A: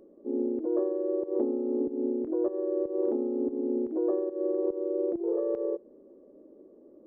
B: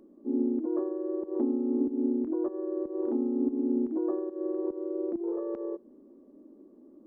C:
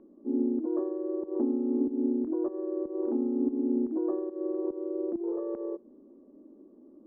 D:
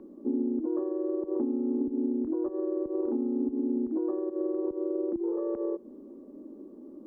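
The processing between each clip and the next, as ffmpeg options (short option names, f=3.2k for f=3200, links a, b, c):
-af "equalizer=f=125:t=o:w=1:g=-7,equalizer=f=250:t=o:w=1:g=9,equalizer=f=500:t=o:w=1:g=-11,equalizer=f=1k:t=o:w=1:g=4"
-af "lowpass=1.5k"
-filter_complex "[0:a]bandreject=f=680:w=12,acrossover=split=130[a][b];[b]acompressor=threshold=-35dB:ratio=6[c];[a][c]amix=inputs=2:normalize=0,volume=7.5dB"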